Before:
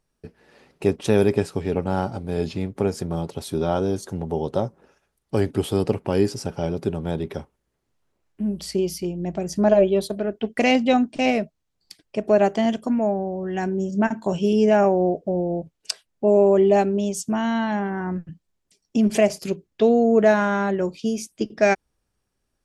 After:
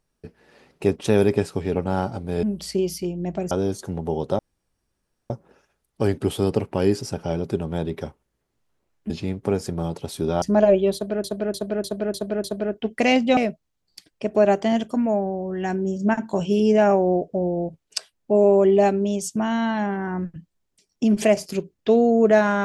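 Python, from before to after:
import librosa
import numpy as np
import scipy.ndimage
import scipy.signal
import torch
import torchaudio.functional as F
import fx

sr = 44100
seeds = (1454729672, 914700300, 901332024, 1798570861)

y = fx.edit(x, sr, fx.swap(start_s=2.43, length_s=1.32, other_s=8.43, other_length_s=1.08),
    fx.insert_room_tone(at_s=4.63, length_s=0.91),
    fx.repeat(start_s=10.03, length_s=0.3, count=6),
    fx.cut(start_s=10.96, length_s=0.34), tone=tone)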